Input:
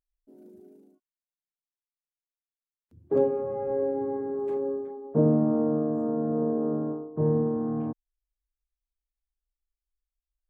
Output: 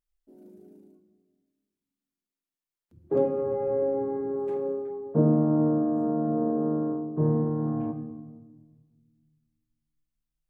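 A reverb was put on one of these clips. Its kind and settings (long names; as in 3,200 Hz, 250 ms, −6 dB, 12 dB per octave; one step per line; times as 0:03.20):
rectangular room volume 1,300 cubic metres, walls mixed, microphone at 0.85 metres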